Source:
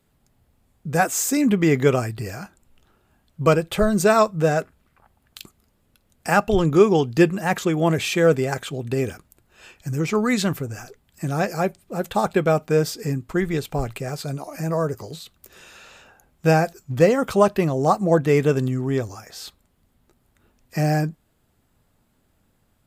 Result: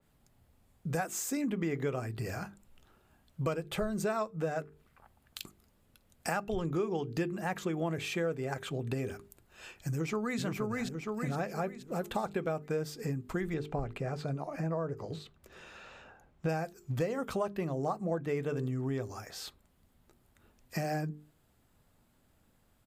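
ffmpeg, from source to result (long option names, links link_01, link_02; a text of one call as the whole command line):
ffmpeg -i in.wav -filter_complex "[0:a]asplit=2[link_01][link_02];[link_02]afade=type=in:start_time=9.91:duration=0.01,afade=type=out:start_time=10.41:duration=0.01,aecho=0:1:470|940|1410|1880|2350:0.749894|0.299958|0.119983|0.0479932|0.0191973[link_03];[link_01][link_03]amix=inputs=2:normalize=0,asettb=1/sr,asplit=3[link_04][link_05][link_06];[link_04]atrim=end=13.544[link_07];[link_05]atrim=start=13.54:end=16.49,asetpts=PTS-STARTPTS,afade=type=in:duration=0.004:curve=qsin,afade=type=out:start_time=2.946:duration=0.004:curve=qsin,aemphasis=mode=reproduction:type=75fm[link_08];[link_06]atrim=start=16.486[link_09];[link_07][link_08]acrossfade=duration=0.004:curve1=hsin:curve2=qsin[link_10];[link_10][link_09]acrossfade=duration=0.004:curve1=qsin:curve2=hsin,bandreject=frequency=50:width_type=h:width=6,bandreject=frequency=100:width_type=h:width=6,bandreject=frequency=150:width_type=h:width=6,bandreject=frequency=200:width_type=h:width=6,bandreject=frequency=250:width_type=h:width=6,bandreject=frequency=300:width_type=h:width=6,bandreject=frequency=350:width_type=h:width=6,bandreject=frequency=400:width_type=h:width=6,bandreject=frequency=450:width_type=h:width=6,acompressor=threshold=-29dB:ratio=4,adynamicequalizer=threshold=0.00316:dfrequency=2900:dqfactor=0.7:tfrequency=2900:tqfactor=0.7:attack=5:release=100:ratio=0.375:range=3:mode=cutabove:tftype=highshelf,volume=-3dB" out.wav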